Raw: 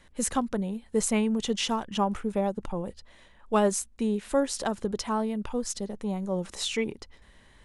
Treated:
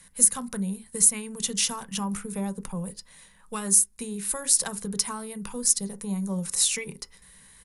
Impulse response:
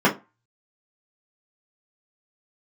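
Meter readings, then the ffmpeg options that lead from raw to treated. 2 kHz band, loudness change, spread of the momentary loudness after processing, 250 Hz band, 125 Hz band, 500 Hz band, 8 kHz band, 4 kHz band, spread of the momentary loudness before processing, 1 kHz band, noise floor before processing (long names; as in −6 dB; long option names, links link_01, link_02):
−1.0 dB, +4.5 dB, 15 LU, −3.5 dB, +1.0 dB, −10.0 dB, +13.0 dB, +3.0 dB, 8 LU, −7.0 dB, −57 dBFS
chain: -filter_complex "[0:a]equalizer=frequency=160:width_type=o:width=0.33:gain=10,equalizer=frequency=315:width_type=o:width=0.33:gain=-10,equalizer=frequency=630:width_type=o:width=0.33:gain=-9,equalizer=frequency=3150:width_type=o:width=0.33:gain=-6,equalizer=frequency=10000:width_type=o:width=0.33:gain=11,acrossover=split=290|940[link_01][link_02][link_03];[link_02]alimiter=level_in=5dB:limit=-24dB:level=0:latency=1,volume=-5dB[link_04];[link_01][link_04][link_03]amix=inputs=3:normalize=0,acompressor=threshold=-27dB:ratio=6,crystalizer=i=5:c=0,asplit=2[link_05][link_06];[1:a]atrim=start_sample=2205[link_07];[link_06][link_07]afir=irnorm=-1:irlink=0,volume=-28.5dB[link_08];[link_05][link_08]amix=inputs=2:normalize=0,aresample=32000,aresample=44100,volume=-4dB"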